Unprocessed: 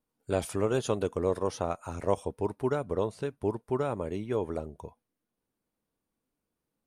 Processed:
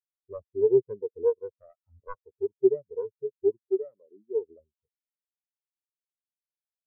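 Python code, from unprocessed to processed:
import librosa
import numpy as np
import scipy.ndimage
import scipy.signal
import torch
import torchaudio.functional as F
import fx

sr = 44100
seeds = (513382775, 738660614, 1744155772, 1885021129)

y = fx.self_delay(x, sr, depth_ms=0.72)
y = fx.low_shelf(y, sr, hz=130.0, db=-11.5, at=(3.67, 4.35), fade=0.02)
y = fx.spectral_expand(y, sr, expansion=4.0)
y = F.gain(torch.from_numpy(y), 2.5).numpy()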